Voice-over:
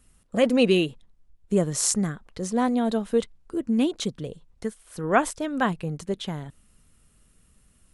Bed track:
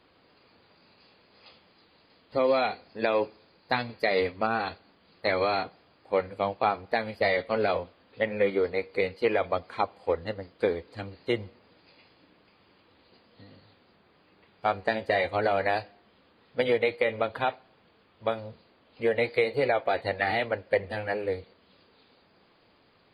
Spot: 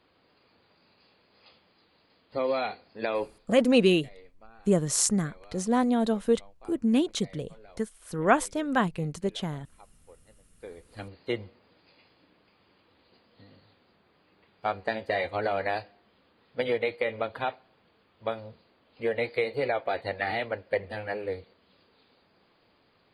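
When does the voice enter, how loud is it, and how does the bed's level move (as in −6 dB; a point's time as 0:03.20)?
3.15 s, −1.0 dB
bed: 0:03.36 −4 dB
0:03.79 −27.5 dB
0:10.45 −27.5 dB
0:11.00 −3 dB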